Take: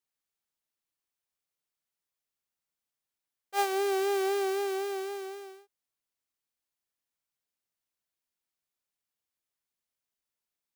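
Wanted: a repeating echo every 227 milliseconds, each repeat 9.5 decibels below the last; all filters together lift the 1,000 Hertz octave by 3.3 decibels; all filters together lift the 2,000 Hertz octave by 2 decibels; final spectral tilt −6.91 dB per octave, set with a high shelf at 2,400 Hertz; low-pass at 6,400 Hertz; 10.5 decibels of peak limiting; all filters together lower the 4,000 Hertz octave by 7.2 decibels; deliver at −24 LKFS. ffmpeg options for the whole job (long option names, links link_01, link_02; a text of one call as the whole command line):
ffmpeg -i in.wav -af "lowpass=6400,equalizer=frequency=1000:width_type=o:gain=5,equalizer=frequency=2000:width_type=o:gain=4.5,highshelf=frequency=2400:gain=-5,equalizer=frequency=4000:width_type=o:gain=-6.5,alimiter=level_in=1.5dB:limit=-24dB:level=0:latency=1,volume=-1.5dB,aecho=1:1:227|454|681|908:0.335|0.111|0.0365|0.012,volume=10dB" out.wav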